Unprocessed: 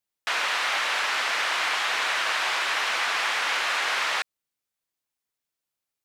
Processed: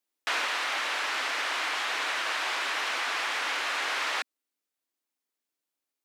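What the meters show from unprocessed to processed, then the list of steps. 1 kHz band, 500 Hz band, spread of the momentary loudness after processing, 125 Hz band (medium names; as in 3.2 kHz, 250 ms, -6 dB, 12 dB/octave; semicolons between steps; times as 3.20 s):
-4.0 dB, -3.0 dB, 1 LU, no reading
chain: resonant low shelf 200 Hz -9.5 dB, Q 3; in parallel at -1.5 dB: peak limiter -21 dBFS, peak gain reduction 8 dB; on the sum: gain riding 0.5 s; trim -8 dB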